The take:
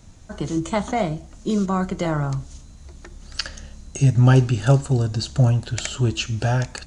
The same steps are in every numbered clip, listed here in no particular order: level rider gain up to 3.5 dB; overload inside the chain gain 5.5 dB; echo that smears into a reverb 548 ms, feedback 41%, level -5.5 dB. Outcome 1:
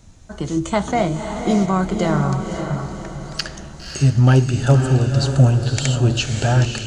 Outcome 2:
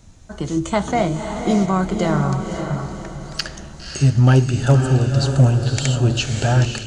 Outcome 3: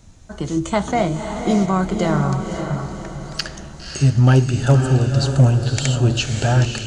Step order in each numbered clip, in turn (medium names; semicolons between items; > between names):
level rider > overload inside the chain > echo that smears into a reverb; echo that smears into a reverb > level rider > overload inside the chain; level rider > echo that smears into a reverb > overload inside the chain